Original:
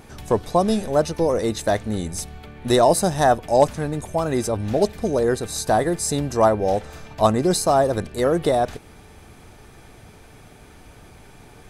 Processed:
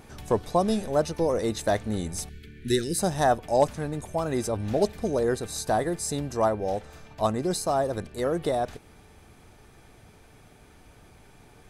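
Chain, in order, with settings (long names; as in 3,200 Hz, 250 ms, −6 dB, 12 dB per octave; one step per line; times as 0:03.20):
0:02.29–0:02.99: elliptic band-stop filter 410–1,600 Hz, stop band 40 dB
speech leveller within 5 dB 2 s
level −6 dB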